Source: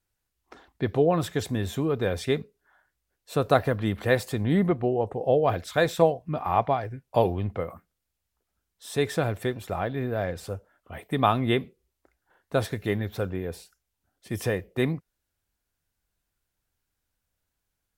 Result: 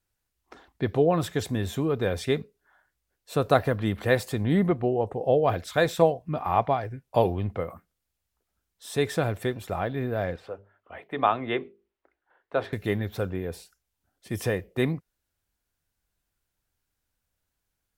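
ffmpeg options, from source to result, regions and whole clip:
-filter_complex "[0:a]asettb=1/sr,asplit=3[a][b][c];[a]atrim=end=10.364[d];[b]atrim=start=10.36:end=12.73,asetpts=PTS-STARTPTS,afade=t=in:d=0.004:c=qsin,afade=t=out:st=2.366:d=0.004:c=qsin,acrossover=split=310 3400:gain=0.224 1 0.0631[e][f][g];[e][f][g]amix=inputs=3:normalize=0,bandreject=f=50:t=h:w=6,bandreject=f=100:t=h:w=6,bandreject=f=150:t=h:w=6,bandreject=f=200:t=h:w=6,bandreject=f=250:t=h:w=6,bandreject=f=300:t=h:w=6,bandreject=f=350:t=h:w=6,bandreject=f=400:t=h:w=6,bandreject=f=450:t=h:w=6[h];[c]atrim=start=12.726[i];[d][h]acrossfade=d=0.004:c1=hsin:c2=qsin[j];[j][i]acrossfade=d=0.004:c1=qsin:c2=hsin"

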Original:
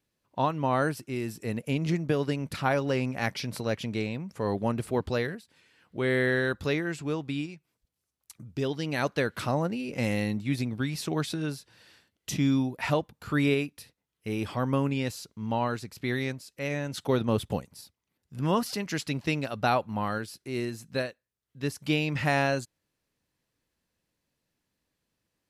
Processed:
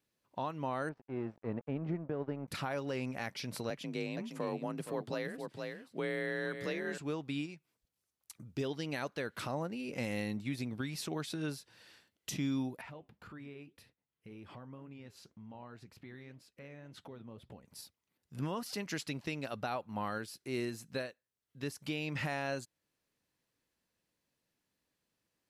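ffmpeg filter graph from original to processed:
-filter_complex "[0:a]asettb=1/sr,asplit=3[a][b][c];[a]atrim=end=0.894[d];[b]atrim=start=0.89:end=2.48,asetpts=PTS-STARTPTS,afade=t=in:d=0.004:c=qsin,afade=t=out:st=1.586:d=0.004:c=qsin,aeval=exprs='sgn(val(0))*max(abs(val(0))-0.00794,0)':c=same,lowpass=1.2k[e];[c]atrim=start=2.476[f];[d][e]acrossfade=d=0.004:c1=hsin:c2=qsin[g];[g][f]acrossfade=d=0.004:c1=qsin:c2=hsin,asettb=1/sr,asplit=3[h][i][j];[h]atrim=end=3.704[k];[i]atrim=start=3.7:end=6.98,asetpts=PTS-STARTPTS,afade=t=in:d=0.004:c=qsin,afade=t=out:st=3.276:d=0.004:c=qsin,afreqshift=39,aecho=1:1:467:0.299,atrim=end_sample=144648[l];[j]atrim=start=6.976[m];[k][l]acrossfade=d=0.004:c1=hsin:c2=qsin[n];[n][m]acrossfade=d=0.004:c1=qsin:c2=hsin,asettb=1/sr,asplit=3[o][p][q];[o]atrim=end=12.814[r];[p]atrim=start=12.81:end=17.68,asetpts=PTS-STARTPTS,afade=t=in:d=0.004:c=qsin,afade=t=out:st=4.866:d=0.004:c=qsin,bass=f=250:g=4,treble=f=4k:g=-11,acompressor=threshold=-40dB:ratio=4:attack=3.2:release=140:knee=1:detection=peak,flanger=delay=2.9:depth=6.4:regen=-75:speed=1.9:shape=sinusoidal[s];[q]atrim=start=17.676[t];[r][s]acrossfade=d=0.004:c1=hsin:c2=qsin[u];[u][t]acrossfade=d=0.004:c1=qsin:c2=hsin,lowshelf=f=120:g=-7.5,alimiter=limit=-24dB:level=0:latency=1:release=375,volume=-2.5dB"

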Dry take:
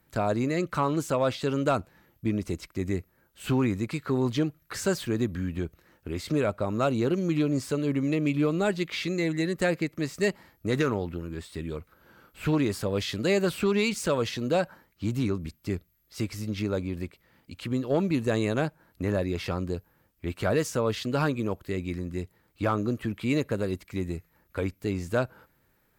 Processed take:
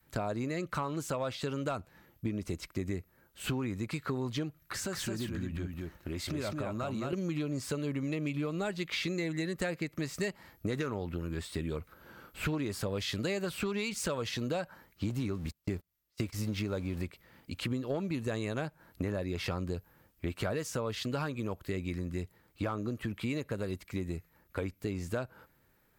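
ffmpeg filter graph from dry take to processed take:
-filter_complex "[0:a]asettb=1/sr,asplit=3[a][b][c];[a]atrim=end=4.624[d];[b]atrim=start=4.62:end=7.13,asetpts=PTS-STARTPTS,afade=t=in:d=0.004:c=qsin,afade=t=out:st=2.506:d=0.004:c=qsin,bandreject=f=460:w=5.3,acompressor=threshold=-37dB:ratio=2.5:attack=3.2:release=140:knee=1:detection=peak,aecho=1:1:217:0.668,atrim=end_sample=110691[e];[c]atrim=start=7.126[f];[d][e]acrossfade=d=0.004:c1=hsin:c2=qsin[g];[g][f]acrossfade=d=0.004:c1=qsin:c2=hsin,asettb=1/sr,asplit=3[h][i][j];[h]atrim=end=15.104[k];[i]atrim=start=15.1:end=17.02,asetpts=PTS-STARTPTS,afade=t=in:d=0.004:c=qsin,afade=t=out:st=1.916:d=0.004:c=qsin,aeval=exprs='val(0)+0.5*0.00562*sgn(val(0))':c=same,agate=range=-36dB:threshold=-38dB:ratio=16:release=100:detection=peak[l];[j]atrim=start=17.016[m];[k][l]acrossfade=d=0.004:c1=hsin:c2=qsin[n];[n][m]acrossfade=d=0.004:c1=qsin:c2=hsin,dynaudnorm=f=320:g=31:m=3dB,adynamicequalizer=threshold=0.0141:dfrequency=320:dqfactor=0.78:tfrequency=320:tqfactor=0.78:attack=5:release=100:ratio=0.375:range=2:mode=cutabove:tftype=bell,acompressor=threshold=-31dB:ratio=6"

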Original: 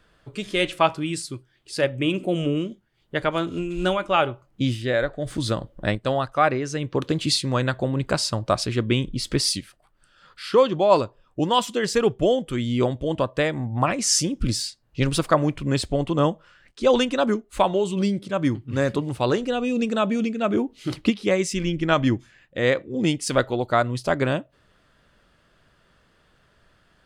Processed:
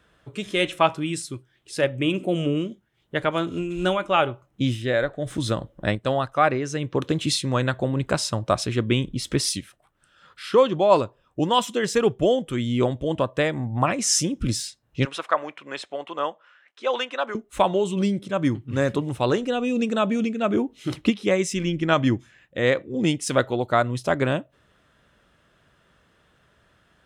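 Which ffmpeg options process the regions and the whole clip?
-filter_complex "[0:a]asettb=1/sr,asplit=3[a][b][c];[a]atrim=end=15.054[d];[b]atrim=start=15.05:end=17.35,asetpts=PTS-STARTPTS,afade=t=in:d=0.004:c=qsin,afade=t=out:st=2.296:d=0.004:c=qsin,highpass=700,lowpass=2.2k,aemphasis=mode=production:type=75fm[e];[c]atrim=start=17.346[f];[d][e]acrossfade=d=0.004:c1=hsin:c2=qsin[g];[g][f]acrossfade=d=0.004:c1=qsin:c2=hsin,highpass=46,bandreject=f=4.6k:w=7"

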